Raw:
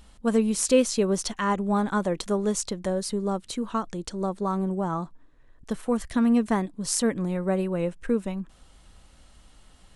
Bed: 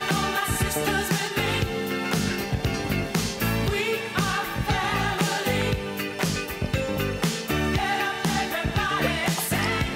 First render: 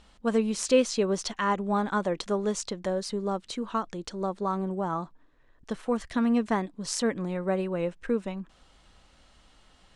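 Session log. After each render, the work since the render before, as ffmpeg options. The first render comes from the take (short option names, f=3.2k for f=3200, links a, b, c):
-af "lowpass=6k,lowshelf=f=230:g=-7.5"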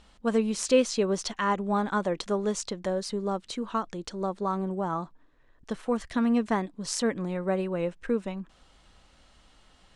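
-af anull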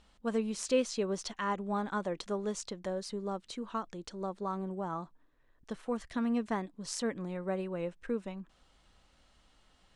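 -af "volume=-7dB"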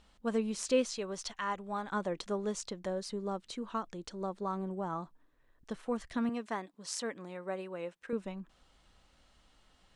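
-filter_complex "[0:a]asettb=1/sr,asplit=3[a][b][c];[a]atrim=end=0.964[d];[b]atrim=start=0.96:end=1.91,asetpts=PTS-STARTPTS,afade=t=in:d=0.004:c=qsin,afade=t=out:st=0.946:d=0.004:c=qsin,equalizer=f=260:t=o:w=2:g=-8.5[e];[c]atrim=start=1.906[f];[d][e]acrossfade=d=0.004:c1=hsin:c2=qsin[g];[g][f]acrossfade=d=0.004:c1=qsin:c2=hsin,asettb=1/sr,asplit=3[h][i][j];[h]atrim=end=6.294[k];[i]atrim=start=6.29:end=8.13,asetpts=PTS-STARTPTS,afade=t=in:d=0.004:c=qsin,afade=t=out:st=1.836:d=0.004:c=qsin,highpass=f=510:p=1[l];[j]atrim=start=8.126[m];[k][l]acrossfade=d=0.004:c1=hsin:c2=qsin[n];[n][m]acrossfade=d=0.004:c1=qsin:c2=hsin"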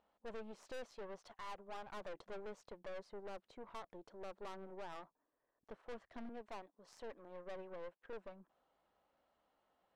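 -af "bandpass=f=660:t=q:w=1.2:csg=0,aeval=exprs='(tanh(178*val(0)+0.8)-tanh(0.8))/178':c=same"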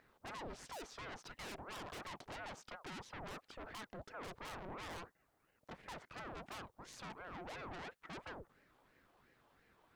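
-af "aeval=exprs='0.00944*sin(PI/2*2.51*val(0)/0.00944)':c=same,aeval=exprs='val(0)*sin(2*PI*630*n/s+630*0.75/2.9*sin(2*PI*2.9*n/s))':c=same"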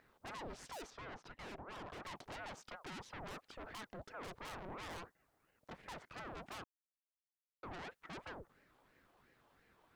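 -filter_complex "[0:a]asettb=1/sr,asplit=3[a][b][c];[a]atrim=end=0.904[d];[b]atrim=start=0.9:end=2.05,asetpts=PTS-STARTPTS,afade=t=in:d=0.004:c=qsin,afade=t=out:st=1.146:d=0.004:c=qsin,lowpass=f=2.2k:p=1[e];[c]atrim=start=2.046[f];[d][e]acrossfade=d=0.004:c1=hsin:c2=qsin[g];[g][f]acrossfade=d=0.004:c1=qsin:c2=hsin,asplit=3[h][i][j];[h]atrim=end=6.64,asetpts=PTS-STARTPTS,afade=t=out:st=6.636:d=0.004:c=hsin[k];[i]atrim=start=6.64:end=7.63,asetpts=PTS-STARTPTS,volume=0[l];[j]atrim=start=7.63,asetpts=PTS-STARTPTS,afade=t=in:d=0.004:c=hsin[m];[k][l][m]concat=n=3:v=0:a=1"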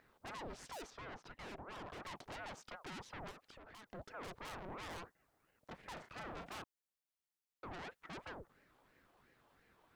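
-filter_complex "[0:a]asplit=3[a][b][c];[a]afade=t=out:st=3.3:d=0.02[d];[b]acompressor=threshold=-53dB:ratio=12:attack=3.2:release=140:knee=1:detection=peak,afade=t=in:st=3.3:d=0.02,afade=t=out:st=3.87:d=0.02[e];[c]afade=t=in:st=3.87:d=0.02[f];[d][e][f]amix=inputs=3:normalize=0,asettb=1/sr,asplit=3[g][h][i];[g]atrim=end=5.934[j];[h]atrim=start=5.93:end=6.62,asetpts=PTS-STARTPTS,afade=t=in:d=0.004:c=qsin,afade=t=out:st=0.686:d=0.004:c=qsin,asplit=2[k][l];[l]adelay=36,volume=-6.5dB[m];[k][m]amix=inputs=2:normalize=0,atrim=end_sample=30429[n];[i]atrim=start=6.616[o];[j][n]acrossfade=d=0.004:c1=hsin:c2=qsin[p];[p][o]acrossfade=d=0.004:c1=qsin:c2=hsin"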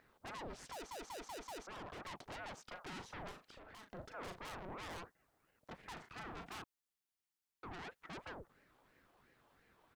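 -filter_complex "[0:a]asplit=3[a][b][c];[a]afade=t=out:st=2.7:d=0.02[d];[b]asplit=2[e][f];[f]adelay=39,volume=-8dB[g];[e][g]amix=inputs=2:normalize=0,afade=t=in:st=2.7:d=0.02,afade=t=out:st=4.39:d=0.02[h];[c]afade=t=in:st=4.39:d=0.02[i];[d][h][i]amix=inputs=3:normalize=0,asettb=1/sr,asplit=3[j][k][l];[j]atrim=end=5.864[m];[k]atrim=start=5.86:end=7.86,asetpts=PTS-STARTPTS,afade=t=in:d=0.004:c=qsin,afade=t=out:st=1.996:d=0.004:c=qsin,equalizer=f=570:w=5.2:g=-11.5[n];[l]atrim=start=7.856[o];[m][n]acrossfade=d=0.004:c1=hsin:c2=qsin[p];[p][o]acrossfade=d=0.004:c1=qsin:c2=hsin,asplit=6[q][r][s][t][u][v];[q]atrim=end=0.912[w];[r]atrim=start=0.718:end=0.912[x];[s]atrim=start=0.718:end=0.912[y];[t]atrim=start=0.718:end=0.912[z];[u]atrim=start=0.718:end=0.912[aa];[v]atrim=start=1.668[ab];[w][x]acrossfade=d=0.004:c1=hsin:c2=hsin[ac];[ac][y]acrossfade=d=0.004:c1=hsin:c2=hsin[ad];[ad][z]acrossfade=d=0.004:c1=hsin:c2=hsin[ae];[ae][aa]acrossfade=d=0.004:c1=hsin:c2=hsin[af];[af][ab]acrossfade=d=0.004:c1=hsin:c2=hsin"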